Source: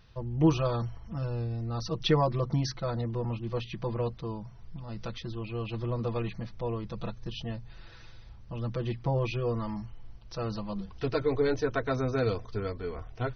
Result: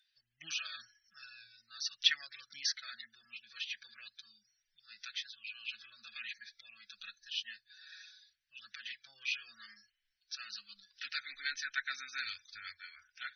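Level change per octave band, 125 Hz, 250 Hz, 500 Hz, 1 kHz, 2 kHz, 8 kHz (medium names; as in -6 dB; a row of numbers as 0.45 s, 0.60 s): under -40 dB, under -40 dB, under -40 dB, -18.0 dB, +2.0 dB, no reading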